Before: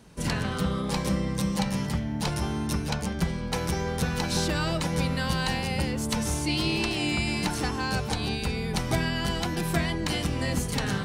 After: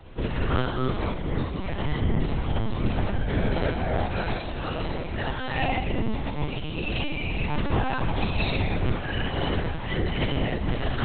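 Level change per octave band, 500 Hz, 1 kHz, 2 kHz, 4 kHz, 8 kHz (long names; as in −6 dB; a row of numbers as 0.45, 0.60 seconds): +2.0 dB, +1.5 dB, −0.5 dB, −4.0 dB, below −40 dB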